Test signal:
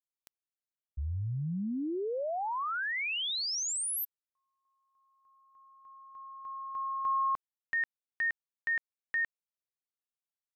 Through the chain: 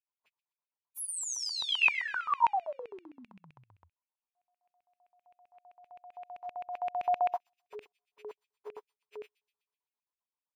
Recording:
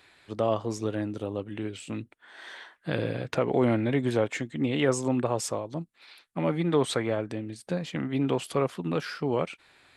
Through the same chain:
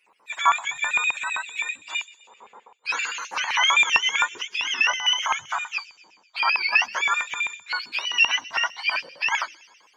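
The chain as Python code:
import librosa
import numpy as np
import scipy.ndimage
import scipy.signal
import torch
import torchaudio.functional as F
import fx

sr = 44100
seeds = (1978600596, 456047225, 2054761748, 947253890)

y = fx.octave_mirror(x, sr, pivot_hz=880.0)
y = fx.echo_wet_highpass(y, sr, ms=122, feedback_pct=60, hz=3800.0, wet_db=-14)
y = fx.filter_lfo_highpass(y, sr, shape='square', hz=7.7, low_hz=970.0, high_hz=2500.0, q=6.3)
y = F.gain(torch.from_numpy(y), 2.5).numpy()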